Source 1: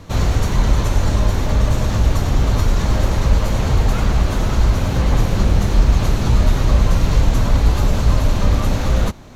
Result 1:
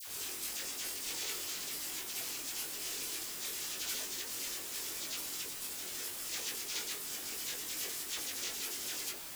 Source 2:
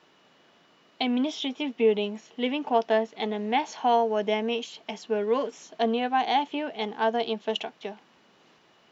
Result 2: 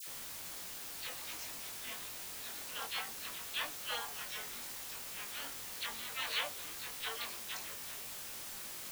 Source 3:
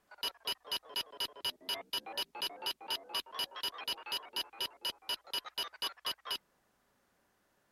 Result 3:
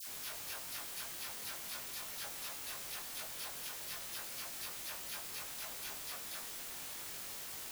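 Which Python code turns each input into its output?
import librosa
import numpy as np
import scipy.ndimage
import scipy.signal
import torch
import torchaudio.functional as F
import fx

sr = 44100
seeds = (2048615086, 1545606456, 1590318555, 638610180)

y = fx.spec_quant(x, sr, step_db=15)
y = scipy.signal.sosfilt(scipy.signal.butter(4, 700.0, 'highpass', fs=sr, output='sos'), y)
y = fx.spec_gate(y, sr, threshold_db=-20, keep='weak')
y = fx.quant_dither(y, sr, seeds[0], bits=8, dither='triangular')
y = fx.doubler(y, sr, ms=22.0, db=-4.0)
y = fx.dispersion(y, sr, late='lows', ms=72.0, hz=1500.0)
y = F.gain(torch.from_numpy(y), 1.0).numpy()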